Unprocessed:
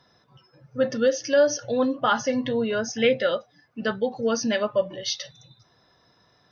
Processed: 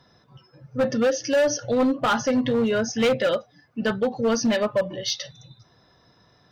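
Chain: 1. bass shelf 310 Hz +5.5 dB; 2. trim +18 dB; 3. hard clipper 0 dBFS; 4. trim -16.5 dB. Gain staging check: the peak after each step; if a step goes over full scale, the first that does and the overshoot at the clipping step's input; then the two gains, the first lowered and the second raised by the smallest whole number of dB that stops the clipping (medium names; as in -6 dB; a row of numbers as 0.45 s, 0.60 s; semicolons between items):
-8.5 dBFS, +9.5 dBFS, 0.0 dBFS, -16.5 dBFS; step 2, 9.5 dB; step 2 +8 dB, step 4 -6.5 dB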